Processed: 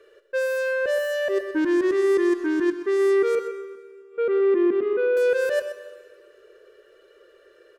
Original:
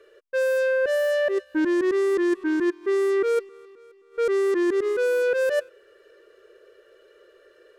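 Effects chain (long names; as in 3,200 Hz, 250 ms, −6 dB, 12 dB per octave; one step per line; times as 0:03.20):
0:03.35–0:05.17: loudspeaker in its box 110–2,800 Hz, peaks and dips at 230 Hz +9 dB, 970 Hz −4 dB, 1,800 Hz −9 dB
on a send: single-tap delay 125 ms −12 dB
on the sum: four-comb reverb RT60 1.6 s, combs from 33 ms, DRR 11.5 dB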